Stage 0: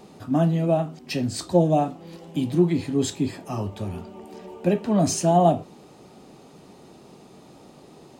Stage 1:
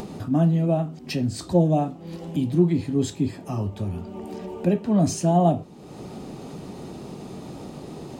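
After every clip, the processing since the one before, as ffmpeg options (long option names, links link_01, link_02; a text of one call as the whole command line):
ffmpeg -i in.wav -af "lowshelf=frequency=310:gain=8.5,acompressor=mode=upward:threshold=-21dB:ratio=2.5,volume=-4.5dB" out.wav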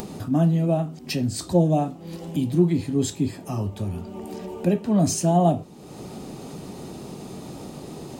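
ffmpeg -i in.wav -af "highshelf=frequency=6400:gain=9" out.wav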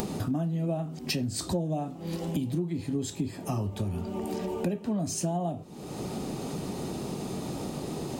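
ffmpeg -i in.wav -af "acompressor=threshold=-29dB:ratio=12,volume=2.5dB" out.wav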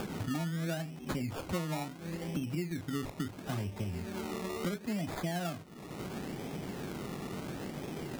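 ffmpeg -i in.wav -af "acrusher=samples=22:mix=1:aa=0.000001:lfo=1:lforange=13.2:lforate=0.73,volume=-5.5dB" out.wav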